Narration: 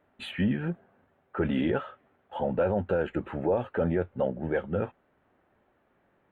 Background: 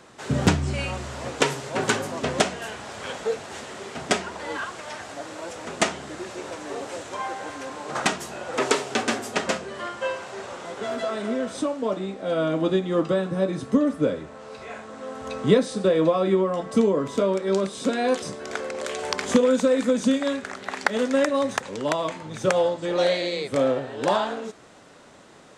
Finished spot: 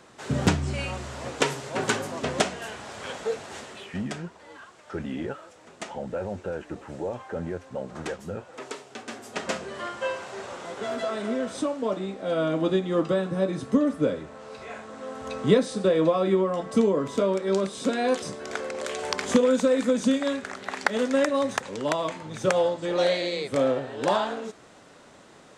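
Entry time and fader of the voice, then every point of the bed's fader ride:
3.55 s, −5.5 dB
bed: 0:03.59 −2.5 dB
0:04.16 −15.5 dB
0:09.00 −15.5 dB
0:09.62 −1.5 dB

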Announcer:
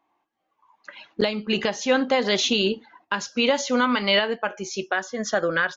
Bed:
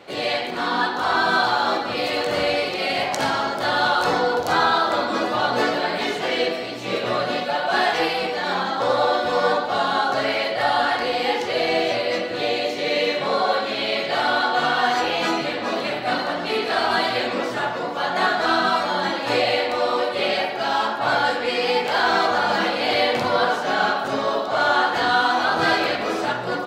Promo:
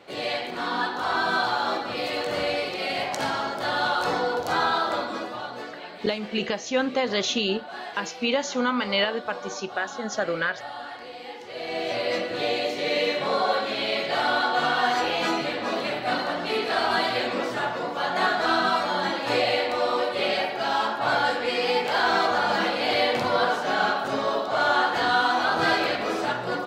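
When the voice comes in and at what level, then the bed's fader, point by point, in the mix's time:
4.85 s, −3.5 dB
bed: 0:04.94 −5 dB
0:05.67 −17 dB
0:11.39 −17 dB
0:12.05 −3 dB

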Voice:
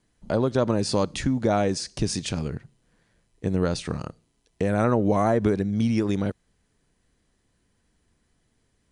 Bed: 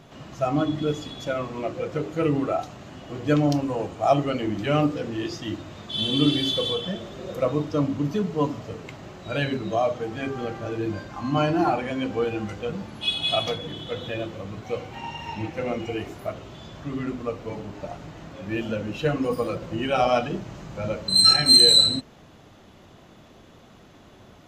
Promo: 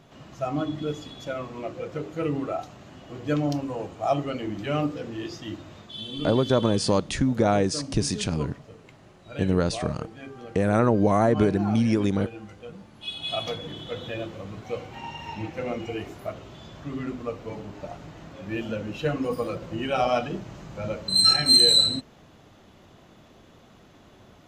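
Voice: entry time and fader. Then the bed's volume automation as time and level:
5.95 s, +1.0 dB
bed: 0:05.76 −4.5 dB
0:06.05 −11.5 dB
0:12.92 −11.5 dB
0:13.59 −2.5 dB

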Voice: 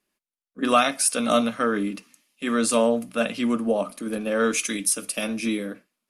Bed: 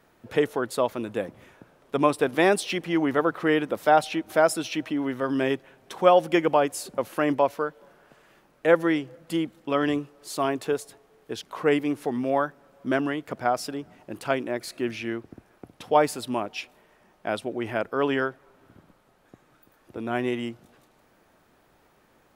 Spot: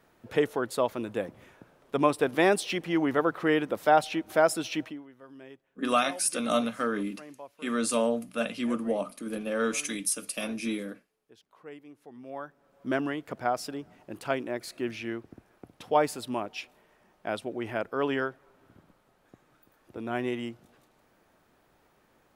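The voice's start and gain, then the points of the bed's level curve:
5.20 s, −6.0 dB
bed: 0:04.83 −2.5 dB
0:05.07 −23.5 dB
0:11.98 −23.5 dB
0:12.90 −4 dB

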